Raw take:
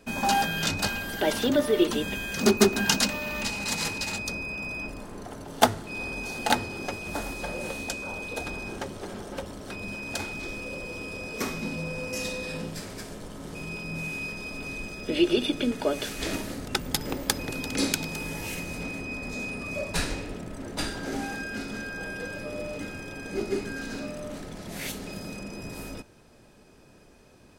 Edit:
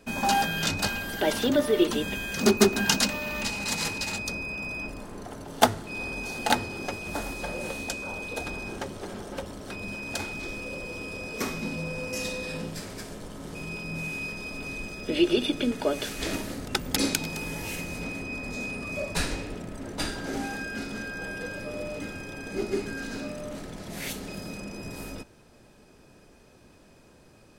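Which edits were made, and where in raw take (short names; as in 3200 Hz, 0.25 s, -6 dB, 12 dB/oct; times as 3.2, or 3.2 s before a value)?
16.96–17.75 cut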